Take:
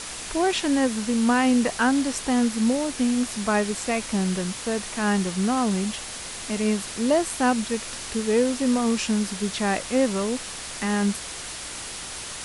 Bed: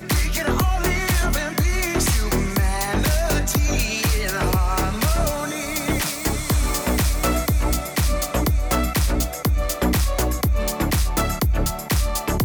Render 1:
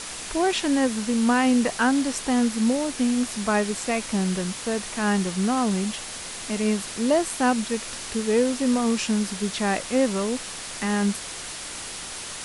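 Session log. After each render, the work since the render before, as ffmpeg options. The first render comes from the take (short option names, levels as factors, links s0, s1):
-af "bandreject=f=60:t=h:w=4,bandreject=f=120:t=h:w=4"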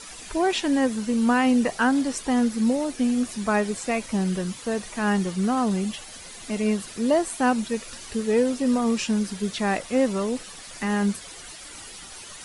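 -af "afftdn=nr=11:nf=-36"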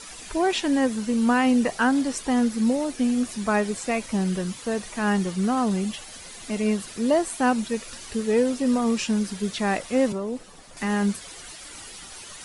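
-filter_complex "[0:a]asettb=1/sr,asplit=3[s0][s1][s2];[s0]atrim=end=10.124[s3];[s1]atrim=start=10.12:end=10.77,asetpts=PTS-STARTPTS,afade=t=in:d=0.004:c=qsin,afade=t=out:st=0.646:d=0.004:c=qsin,acrossover=split=200|1100[s4][s5][s6];[s4]acompressor=threshold=0.01:ratio=4[s7];[s5]acompressor=threshold=0.0447:ratio=4[s8];[s6]acompressor=threshold=0.00282:ratio=4[s9];[s7][s8][s9]amix=inputs=3:normalize=0[s10];[s2]atrim=start=10.766[s11];[s3][s10]acrossfade=d=0.004:c1=hsin:c2=qsin[s12];[s12][s11]acrossfade=d=0.004:c1=qsin:c2=hsin"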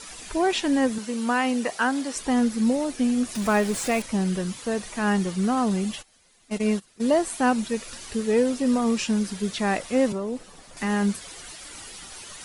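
-filter_complex "[0:a]asettb=1/sr,asplit=3[s0][s1][s2];[s0]atrim=end=0.984[s3];[s1]atrim=start=0.98:end=2.16,asetpts=PTS-STARTPTS,afade=t=in:d=0.004:c=qsin,afade=t=out:st=1.176:d=0.004:c=qsin,highpass=f=420:p=1[s4];[s2]atrim=start=2.156[s5];[s3][s4]acrossfade=d=0.004:c1=hsin:c2=qsin[s6];[s6][s5]acrossfade=d=0.004:c1=qsin:c2=hsin,asettb=1/sr,asplit=3[s7][s8][s9];[s7]atrim=end=3.354[s10];[s8]atrim=start=3.35:end=4.02,asetpts=PTS-STARTPTS,afade=t=in:d=0.004:c=qsin,afade=t=out:st=0.666:d=0.004:c=qsin,aeval=exprs='val(0)+0.5*0.0299*sgn(val(0))':c=same[s11];[s9]atrim=start=4.016[s12];[s10][s11]acrossfade=d=0.004:c1=hsin:c2=qsin[s13];[s13][s12]acrossfade=d=0.004:c1=qsin:c2=hsin,asplit=3[s14][s15][s16];[s14]afade=t=out:st=6.01:d=0.02[s17];[s15]agate=range=0.112:threshold=0.0355:ratio=16:release=100:detection=peak,afade=t=in:st=6.01:d=0.02,afade=t=out:st=7.05:d=0.02[s18];[s16]afade=t=in:st=7.05:d=0.02[s19];[s17][s18][s19]amix=inputs=3:normalize=0"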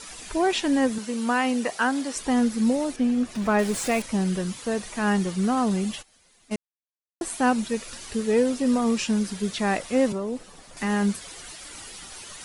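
-filter_complex "[0:a]asettb=1/sr,asplit=3[s0][s1][s2];[s0]atrim=end=2.964[s3];[s1]atrim=start=2.96:end=3.59,asetpts=PTS-STARTPTS,afade=t=in:d=0.004:c=qsin,afade=t=out:st=0.626:d=0.004:c=qsin,lowpass=f=2600:p=1[s4];[s2]atrim=start=3.586[s5];[s3][s4]acrossfade=d=0.004:c1=hsin:c2=qsin[s6];[s6][s5]acrossfade=d=0.004:c1=qsin:c2=hsin,asplit=3[s7][s8][s9];[s7]atrim=end=6.56,asetpts=PTS-STARTPTS,afade=t=out:st=6.556:d=0.004:c=hsin[s10];[s8]atrim=start=6.56:end=7.21,asetpts=PTS-STARTPTS,volume=0[s11];[s9]atrim=start=7.21,asetpts=PTS-STARTPTS,afade=t=in:d=0.004:c=hsin[s12];[s10][s11][s12]concat=n=3:v=0:a=1"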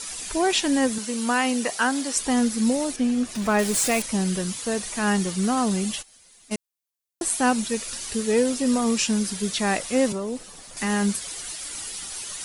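-af "highshelf=f=4000:g=10.5"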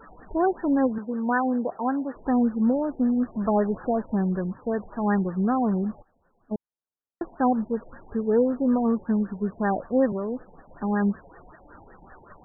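-af "afftfilt=real='re*lt(b*sr/1024,910*pow(1900/910,0.5+0.5*sin(2*PI*5.3*pts/sr)))':imag='im*lt(b*sr/1024,910*pow(1900/910,0.5+0.5*sin(2*PI*5.3*pts/sr)))':win_size=1024:overlap=0.75"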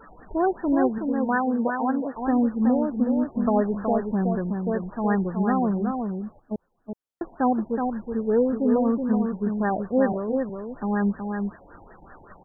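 -af "aecho=1:1:372:0.562"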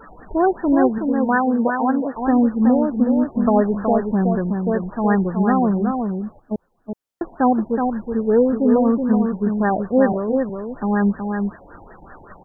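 -af "volume=1.88"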